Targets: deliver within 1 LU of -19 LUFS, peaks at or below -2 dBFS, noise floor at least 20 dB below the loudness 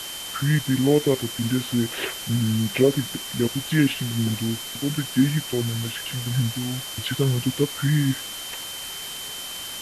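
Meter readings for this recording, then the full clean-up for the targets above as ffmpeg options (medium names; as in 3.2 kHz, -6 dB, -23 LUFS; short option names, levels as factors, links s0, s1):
steady tone 3.1 kHz; tone level -35 dBFS; noise floor -34 dBFS; noise floor target -44 dBFS; loudness -24.0 LUFS; peak level -5.5 dBFS; loudness target -19.0 LUFS
-> -af "bandreject=f=3100:w=30"
-af "afftdn=nr=10:nf=-34"
-af "volume=1.78,alimiter=limit=0.794:level=0:latency=1"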